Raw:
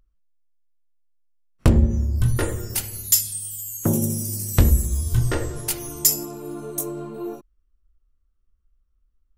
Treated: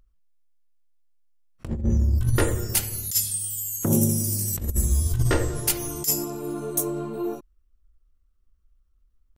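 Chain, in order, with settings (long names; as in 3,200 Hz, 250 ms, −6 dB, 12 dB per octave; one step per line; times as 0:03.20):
tempo change 1×
compressor whose output falls as the input rises −20 dBFS, ratio −0.5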